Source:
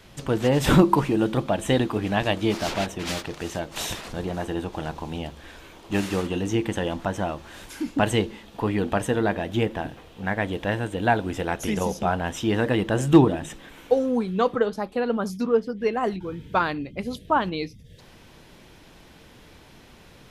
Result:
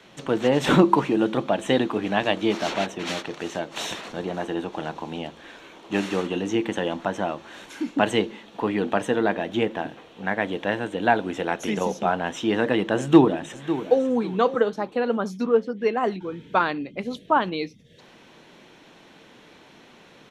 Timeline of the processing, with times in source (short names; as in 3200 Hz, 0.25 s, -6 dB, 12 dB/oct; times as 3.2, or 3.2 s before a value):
12.97–14.06 echo throw 0.55 s, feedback 30%, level -12 dB
whole clip: three-band isolator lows -21 dB, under 160 Hz, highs -14 dB, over 6900 Hz; notch 4900 Hz, Q 7.4; gain +1.5 dB